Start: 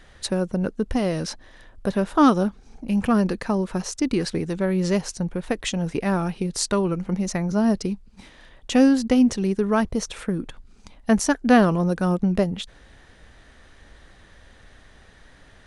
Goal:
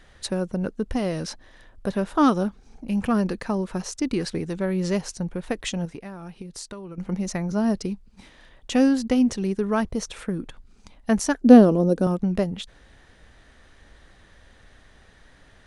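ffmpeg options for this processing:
-filter_complex "[0:a]asettb=1/sr,asplit=3[a][b][c];[a]atrim=end=5.854[d];[b]atrim=start=5.85:end=6.98,asetpts=PTS-STARTPTS,afade=t=in:d=0.004:c=qsin,afade=t=out:st=1.126:d=0.004:c=qsin,acompressor=threshold=-32dB:ratio=12[e];[c]atrim=start=6.976[f];[d][e]acrossfade=d=0.004:c1=hsin:c2=qsin[g];[g][f]acrossfade=d=0.004:c1=qsin:c2=hsin,asettb=1/sr,asplit=3[h][i][j];[h]atrim=end=11.414[k];[i]atrim=start=11.41:end=12.07,asetpts=PTS-STARTPTS,afade=t=in:d=0.004:c=qsin,afade=t=out:st=0.656:d=0.004:c=qsin,equalizer=f=125:t=o:w=1:g=-6,equalizer=f=250:t=o:w=1:g=9,equalizer=f=500:t=o:w=1:g=8,equalizer=f=1k:t=o:w=1:g=-5,equalizer=f=2k:t=o:w=1:g=-8[l];[j]atrim=start=12.066[m];[k][l]acrossfade=d=0.004:c1=hsin:c2=qsin[n];[n][m]acrossfade=d=0.004:c1=qsin:c2=hsin,volume=-2.5dB"

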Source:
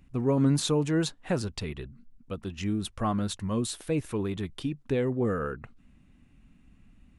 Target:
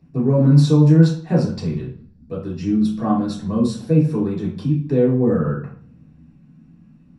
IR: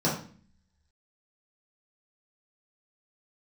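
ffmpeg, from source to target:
-filter_complex "[1:a]atrim=start_sample=2205,asetrate=43218,aresample=44100[a];[0:a][a]afir=irnorm=-1:irlink=0,volume=-8.5dB"

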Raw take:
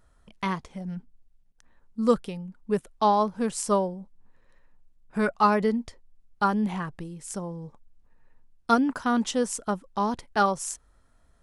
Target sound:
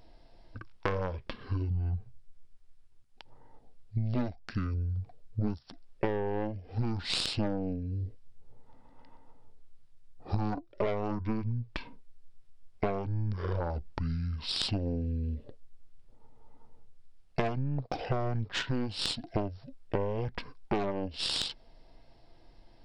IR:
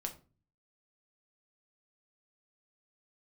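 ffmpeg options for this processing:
-af "asetrate=22050,aresample=44100,aeval=exprs='0.398*(cos(1*acos(clip(val(0)/0.398,-1,1)))-cos(1*PI/2))+0.0794*(cos(6*acos(clip(val(0)/0.398,-1,1)))-cos(6*PI/2))':c=same,acompressor=threshold=-34dB:ratio=12,volume=7dB"

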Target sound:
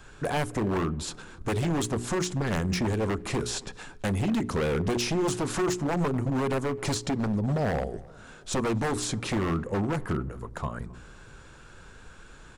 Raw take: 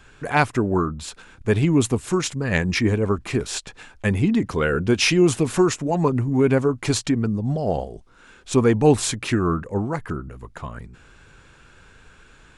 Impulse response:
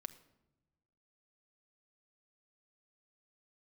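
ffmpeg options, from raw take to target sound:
-filter_complex "[0:a]equalizer=f=2.4k:t=o:w=1.1:g=-6,bandreject=f=60:t=h:w=6,bandreject=f=120:t=h:w=6,bandreject=f=180:t=h:w=6,bandreject=f=240:t=h:w=6,bandreject=f=300:t=h:w=6,bandreject=f=360:t=h:w=6,bandreject=f=420:t=h:w=6,acrossover=split=720|7100[a][b][c];[a]acompressor=threshold=-25dB:ratio=4[d];[b]acompressor=threshold=-35dB:ratio=4[e];[c]acompressor=threshold=-46dB:ratio=4[f];[d][e][f]amix=inputs=3:normalize=0,aeval=exprs='0.0668*(abs(mod(val(0)/0.0668+3,4)-2)-1)':c=same,asplit=2[g][h];[h]adelay=265,lowpass=f=2.3k:p=1,volume=-22.5dB,asplit=2[i][j];[j]adelay=265,lowpass=f=2.3k:p=1,volume=0.51,asplit=2[k][l];[l]adelay=265,lowpass=f=2.3k:p=1,volume=0.51[m];[g][i][k][m]amix=inputs=4:normalize=0,asplit=2[n][o];[1:a]atrim=start_sample=2205[p];[o][p]afir=irnorm=-1:irlink=0,volume=-6dB[q];[n][q]amix=inputs=2:normalize=0"

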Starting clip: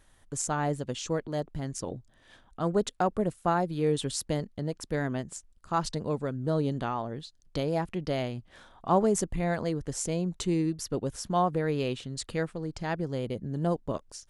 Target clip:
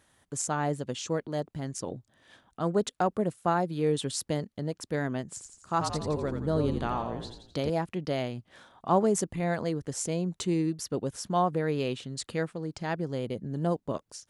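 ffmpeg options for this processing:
-filter_complex "[0:a]highpass=99,asettb=1/sr,asplit=3[a][b][c];[a]atrim=end=5.284[d];[b]atrim=start=5.28:end=7.7,asetpts=PTS-STARTPTS,afade=t=in:d=0.004:c=qsin,afade=t=out:st=2.416:d=0.004:c=qsin,asplit=7[e][f][g][h][i][j][k];[f]adelay=85,afreqshift=-56,volume=-6dB[l];[g]adelay=170,afreqshift=-112,volume=-12dB[m];[h]adelay=255,afreqshift=-168,volume=-18dB[n];[i]adelay=340,afreqshift=-224,volume=-24.1dB[o];[j]adelay=425,afreqshift=-280,volume=-30.1dB[p];[k]adelay=510,afreqshift=-336,volume=-36.1dB[q];[e][l][m][n][o][p][q]amix=inputs=7:normalize=0,atrim=end_sample=106722[r];[c]atrim=start=7.696[s];[d][r]acrossfade=d=0.004:c1=hsin:c2=qsin[t];[t][s]acrossfade=d=0.004:c1=qsin:c2=hsin"

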